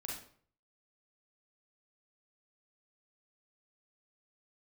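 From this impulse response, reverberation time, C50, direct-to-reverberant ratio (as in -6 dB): 0.55 s, 2.5 dB, -3.0 dB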